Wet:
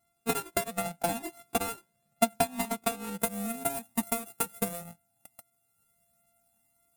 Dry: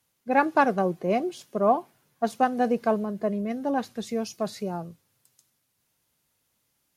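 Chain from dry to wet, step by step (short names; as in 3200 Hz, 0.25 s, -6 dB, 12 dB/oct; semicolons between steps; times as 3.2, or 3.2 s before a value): sample sorter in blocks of 64 samples; resonant high shelf 7100 Hz +8 dB, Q 1.5, from 3.2 s +14 dB; compressor 5:1, threshold -30 dBFS, peak gain reduction 15.5 dB; transient shaper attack +9 dB, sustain -6 dB; small resonant body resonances 210/790/2500/3700 Hz, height 10 dB, ringing for 30 ms; cascading flanger rising 0.74 Hz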